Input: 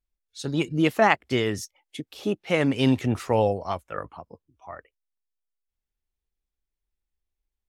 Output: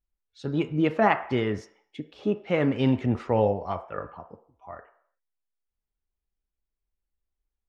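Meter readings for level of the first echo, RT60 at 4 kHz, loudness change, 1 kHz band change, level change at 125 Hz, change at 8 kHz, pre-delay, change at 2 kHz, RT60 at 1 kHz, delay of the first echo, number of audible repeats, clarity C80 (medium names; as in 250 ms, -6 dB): no echo, 0.65 s, -1.5 dB, -1.5 dB, -1.0 dB, under -15 dB, 3 ms, -4.5 dB, 0.70 s, no echo, no echo, 16.0 dB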